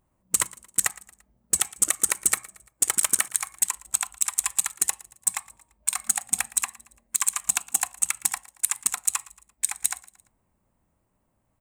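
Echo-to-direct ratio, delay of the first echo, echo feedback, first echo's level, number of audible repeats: −20.0 dB, 114 ms, 46%, −21.0 dB, 3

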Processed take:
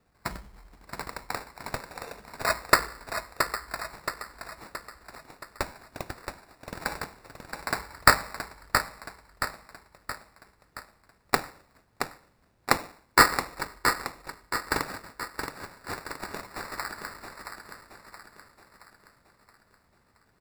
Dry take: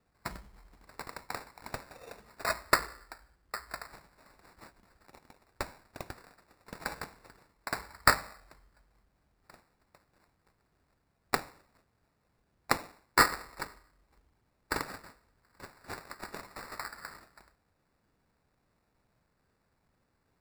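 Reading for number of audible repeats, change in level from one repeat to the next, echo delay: 5, −6.0 dB, 673 ms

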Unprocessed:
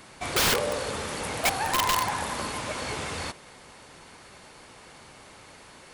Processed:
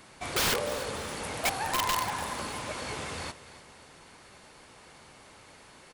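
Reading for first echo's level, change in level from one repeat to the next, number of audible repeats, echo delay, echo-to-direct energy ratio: −16.0 dB, −9.0 dB, 2, 296 ms, −15.5 dB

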